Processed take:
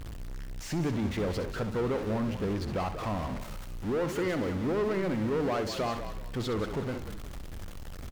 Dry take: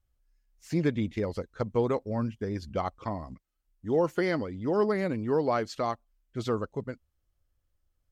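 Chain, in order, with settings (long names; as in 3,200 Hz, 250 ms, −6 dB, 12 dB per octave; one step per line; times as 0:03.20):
converter with a step at zero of −35 dBFS
high-shelf EQ 6,600 Hz −10.5 dB
in parallel at +1 dB: brickwall limiter −23.5 dBFS, peak gain reduction 9 dB
on the sum: soft clipping −20.5 dBFS, distortion −13 dB
echo with shifted repeats 186 ms, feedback 31%, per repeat −50 Hz, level −10 dB
convolution reverb, pre-delay 65 ms, DRR 11 dB
level −5 dB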